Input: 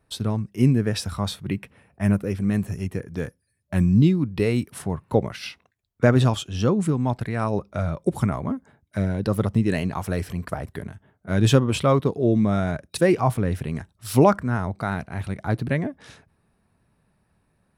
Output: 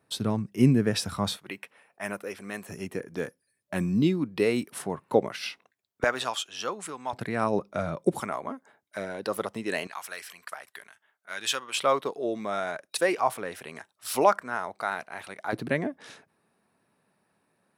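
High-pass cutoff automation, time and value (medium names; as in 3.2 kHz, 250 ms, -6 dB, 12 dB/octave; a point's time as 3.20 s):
150 Hz
from 1.37 s 610 Hz
from 2.69 s 280 Hz
from 6.04 s 860 Hz
from 7.13 s 210 Hz
from 8.20 s 510 Hz
from 9.87 s 1.4 kHz
from 11.78 s 610 Hz
from 15.53 s 260 Hz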